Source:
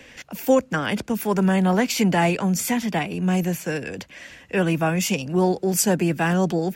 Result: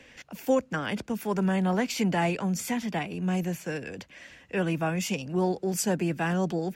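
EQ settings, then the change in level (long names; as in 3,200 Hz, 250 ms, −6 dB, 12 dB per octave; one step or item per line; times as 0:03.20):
high-shelf EQ 11,000 Hz −8 dB
−6.5 dB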